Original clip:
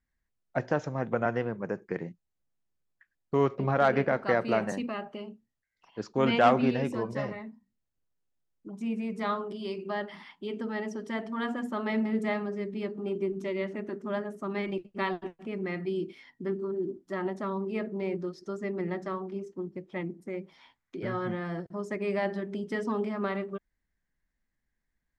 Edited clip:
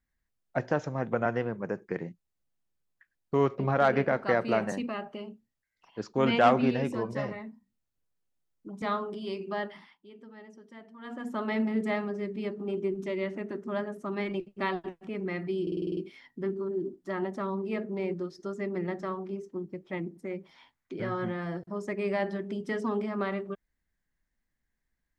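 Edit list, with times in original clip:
8.82–9.20 s: delete
10.00–11.75 s: dip -15.5 dB, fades 0.36 s
16.00 s: stutter 0.05 s, 8 plays

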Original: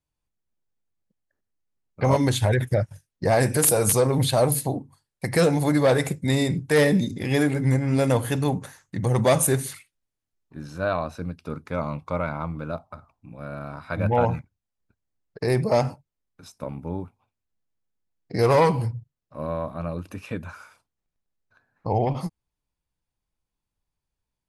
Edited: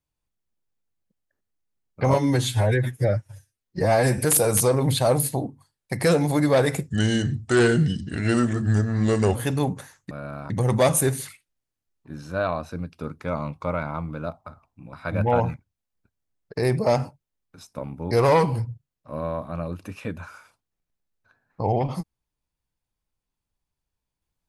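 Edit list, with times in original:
2.14–3.50 s: stretch 1.5×
6.20–8.20 s: speed 81%
13.39–13.78 s: move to 8.96 s
16.96–18.37 s: delete

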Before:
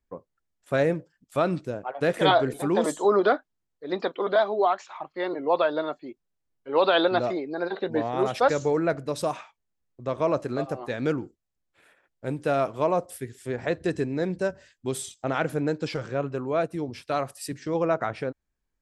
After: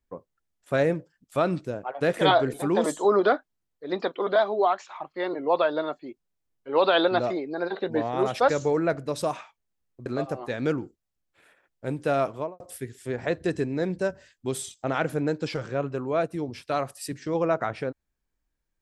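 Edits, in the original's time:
10.06–10.46 s: delete
12.67–13.00 s: studio fade out

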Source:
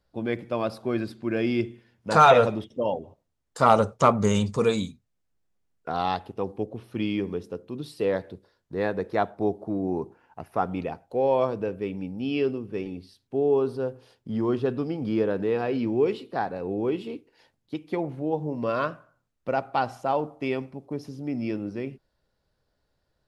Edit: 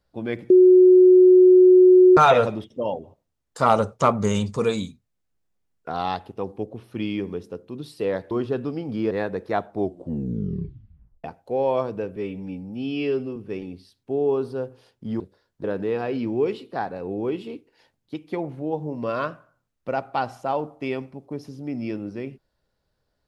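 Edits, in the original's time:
0.50–2.17 s: bleep 367 Hz -8.5 dBFS
8.31–8.75 s: swap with 14.44–15.24 s
9.40 s: tape stop 1.48 s
11.80–12.60 s: stretch 1.5×

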